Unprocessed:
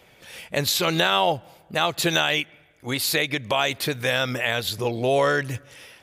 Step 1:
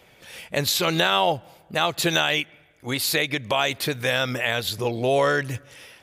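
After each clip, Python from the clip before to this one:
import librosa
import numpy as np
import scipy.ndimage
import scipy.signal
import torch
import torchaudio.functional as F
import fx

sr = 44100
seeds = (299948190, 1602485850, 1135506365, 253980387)

y = x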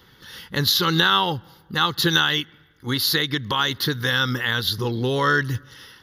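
y = fx.fixed_phaser(x, sr, hz=2400.0, stages=6)
y = y * 10.0 ** (5.5 / 20.0)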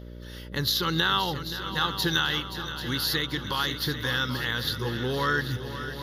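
y = fx.echo_heads(x, sr, ms=263, heads='second and third', feedback_pct=58, wet_db=-12.0)
y = fx.dmg_buzz(y, sr, base_hz=60.0, harmonics=10, level_db=-35.0, tilt_db=-5, odd_only=False)
y = y * 10.0 ** (-6.5 / 20.0)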